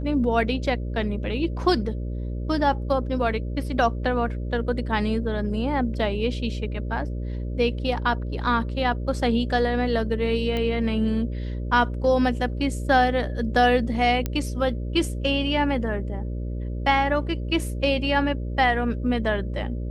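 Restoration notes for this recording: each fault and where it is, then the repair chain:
buzz 60 Hz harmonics 10 -29 dBFS
10.57 pop -16 dBFS
14.26 pop -12 dBFS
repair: de-click; de-hum 60 Hz, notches 10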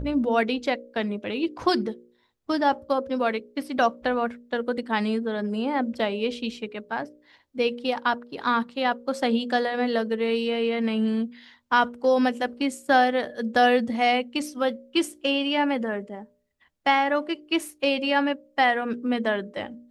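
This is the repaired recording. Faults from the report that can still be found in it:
none

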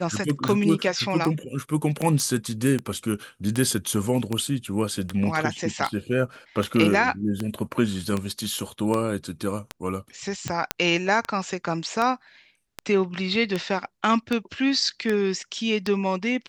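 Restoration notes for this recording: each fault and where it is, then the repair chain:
tick 78 rpm -12 dBFS
2.2 pop -14 dBFS
10.71 pop -5 dBFS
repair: de-click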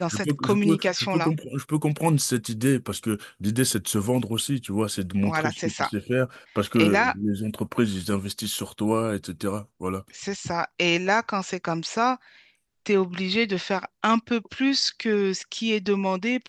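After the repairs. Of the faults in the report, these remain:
none

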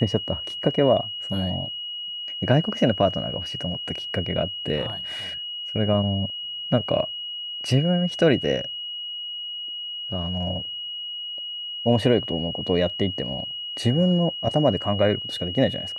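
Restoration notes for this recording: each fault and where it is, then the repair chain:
tone 2900 Hz -30 dBFS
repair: notch 2900 Hz, Q 30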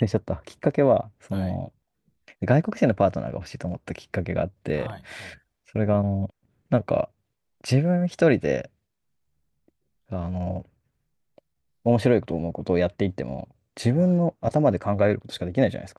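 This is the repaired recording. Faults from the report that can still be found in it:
none

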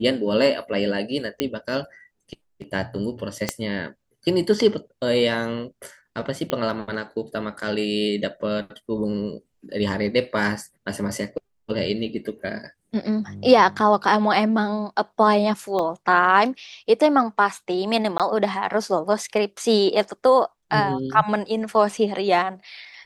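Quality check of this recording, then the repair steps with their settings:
1.4 pop -8 dBFS
3.49 pop -6 dBFS
6.5 pop -11 dBFS
15.79 gap 3.8 ms
18.18–18.2 gap 17 ms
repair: de-click; interpolate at 15.79, 3.8 ms; interpolate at 18.18, 17 ms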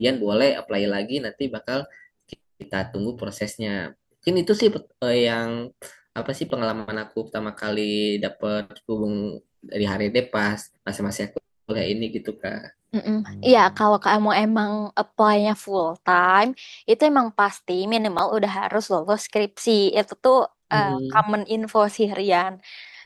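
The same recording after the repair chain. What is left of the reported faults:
3.49 pop
6.5 pop

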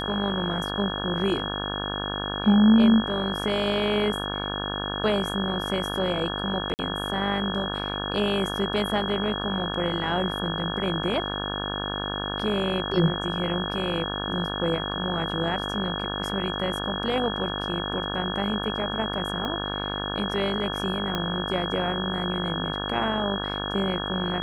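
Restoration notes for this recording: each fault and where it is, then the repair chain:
buzz 50 Hz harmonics 35 -32 dBFS
tone 3300 Hz -32 dBFS
6.74–6.79 gap 49 ms
19.45 pop -18 dBFS
21.15 pop -13 dBFS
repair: de-click; notch 3300 Hz, Q 30; de-hum 50 Hz, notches 35; interpolate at 6.74, 49 ms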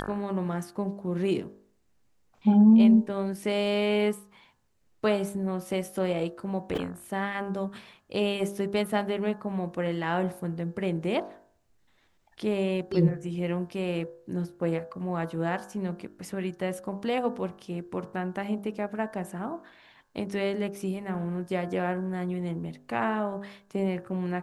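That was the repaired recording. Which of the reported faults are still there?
19.45 pop
21.15 pop

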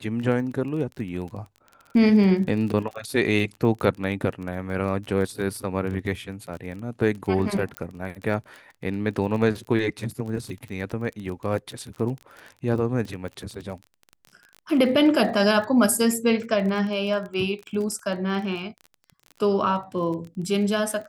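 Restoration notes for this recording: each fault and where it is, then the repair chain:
crackle 26/s -32 dBFS
7.77 pop -14 dBFS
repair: de-click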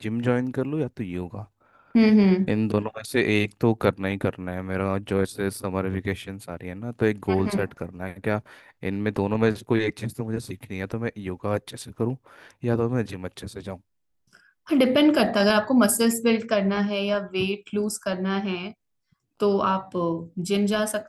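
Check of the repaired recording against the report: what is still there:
none

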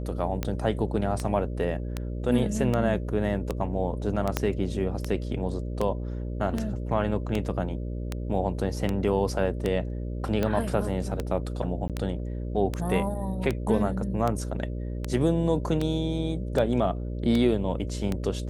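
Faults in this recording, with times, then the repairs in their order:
buzz 60 Hz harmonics 10 -32 dBFS
tick 78 rpm -14 dBFS
4.37 pop -9 dBFS
11.88–11.9 gap 17 ms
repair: de-click; de-hum 60 Hz, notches 10; interpolate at 11.88, 17 ms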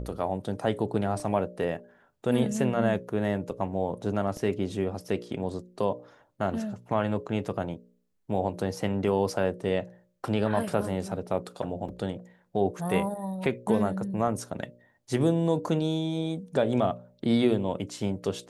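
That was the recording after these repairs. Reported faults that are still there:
4.37 pop

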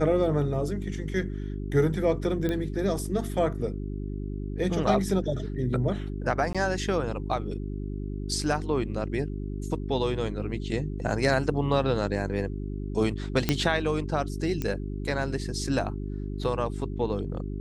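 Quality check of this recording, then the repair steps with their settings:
hum 50 Hz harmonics 8 -33 dBFS
2.49 pop -17 dBFS
6.53–6.55 gap 16 ms
13.49 pop -8 dBFS
14.62 pop -16 dBFS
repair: de-click; de-hum 50 Hz, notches 8; interpolate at 6.53, 16 ms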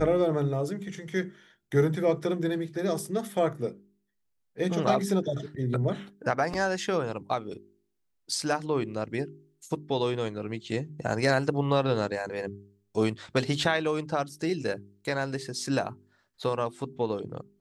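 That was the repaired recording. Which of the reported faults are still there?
none

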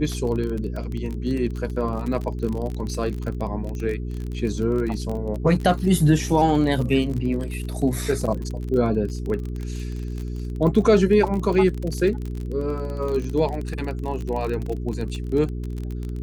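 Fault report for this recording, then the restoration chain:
crackle 32/s -27 dBFS
hum 60 Hz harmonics 7 -29 dBFS
14.66 gap 3.2 ms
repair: de-click; de-hum 60 Hz, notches 7; interpolate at 14.66, 3.2 ms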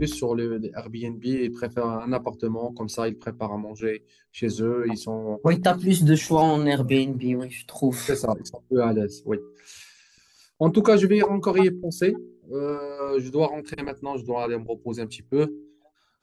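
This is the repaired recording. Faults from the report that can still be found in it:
none

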